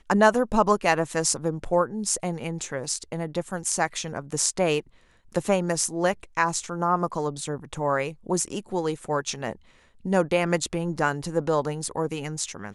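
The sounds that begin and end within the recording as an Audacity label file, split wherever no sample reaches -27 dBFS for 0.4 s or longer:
5.350000	9.530000	sound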